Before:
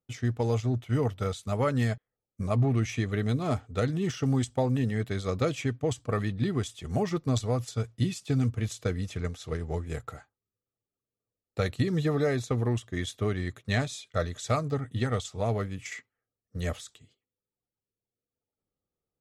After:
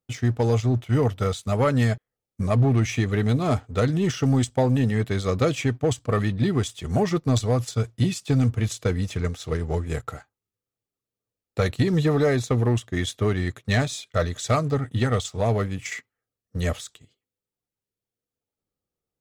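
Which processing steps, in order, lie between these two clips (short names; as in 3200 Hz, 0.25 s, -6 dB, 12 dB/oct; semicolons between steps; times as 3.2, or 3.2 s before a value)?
sample leveller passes 1; gain +3 dB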